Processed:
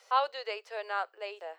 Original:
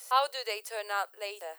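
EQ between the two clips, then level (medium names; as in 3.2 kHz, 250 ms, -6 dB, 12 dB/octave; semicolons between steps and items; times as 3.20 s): distance through air 200 m; 0.0 dB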